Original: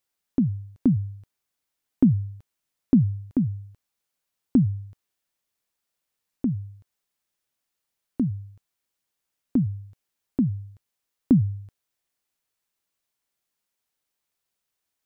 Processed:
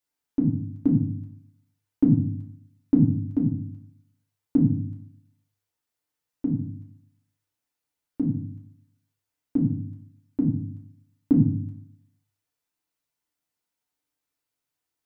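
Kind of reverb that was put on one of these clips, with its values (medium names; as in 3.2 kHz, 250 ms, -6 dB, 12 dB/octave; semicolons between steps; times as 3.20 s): FDN reverb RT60 0.56 s, low-frequency decay 1.4×, high-frequency decay 0.5×, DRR -2.5 dB; trim -6.5 dB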